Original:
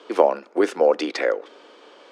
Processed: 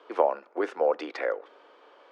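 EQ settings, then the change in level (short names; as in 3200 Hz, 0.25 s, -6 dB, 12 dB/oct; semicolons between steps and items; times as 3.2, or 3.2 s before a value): HPF 980 Hz 12 dB/oct; tilt -6 dB/oct; -1.5 dB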